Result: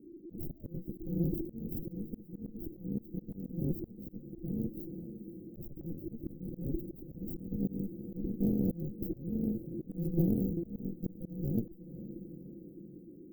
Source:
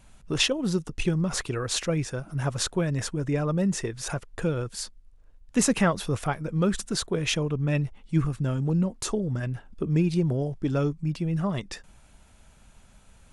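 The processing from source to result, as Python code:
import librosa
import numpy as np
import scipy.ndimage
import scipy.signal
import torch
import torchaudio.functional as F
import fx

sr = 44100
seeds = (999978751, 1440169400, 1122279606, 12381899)

p1 = fx.halfwave_hold(x, sr)
p2 = p1 * np.sin(2.0 * np.pi * 340.0 * np.arange(len(p1)) / sr)
p3 = scipy.signal.sosfilt(scipy.signal.butter(2, 170.0, 'highpass', fs=sr, output='sos'), p2)
p4 = fx.peak_eq(p3, sr, hz=310.0, db=2.0, octaves=0.68)
p5 = p4 + fx.echo_diffused(p4, sr, ms=495, feedback_pct=55, wet_db=-14.0, dry=0)
p6 = fx.dynamic_eq(p5, sr, hz=1300.0, q=0.76, threshold_db=-38.0, ratio=4.0, max_db=-3)
p7 = fx.cheby_harmonics(p6, sr, harmonics=(5, 6), levels_db=(-31, -9), full_scale_db=-8.5)
p8 = scipy.signal.sosfilt(scipy.signal.cheby2(4, 70, [1200.0, 7300.0], 'bandstop', fs=sr, output='sos'), p7)
p9 = fx.auto_swell(p8, sr, attack_ms=332.0)
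y = fx.doppler_dist(p9, sr, depth_ms=0.3)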